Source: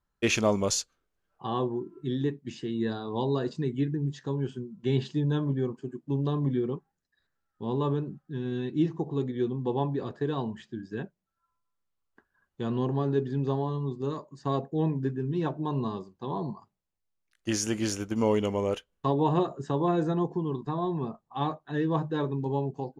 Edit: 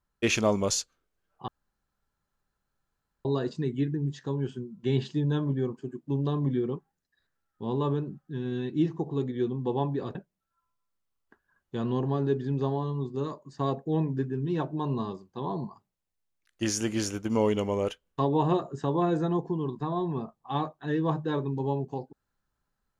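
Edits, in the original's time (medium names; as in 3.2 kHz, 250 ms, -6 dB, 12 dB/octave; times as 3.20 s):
1.48–3.25 s: room tone
10.15–11.01 s: delete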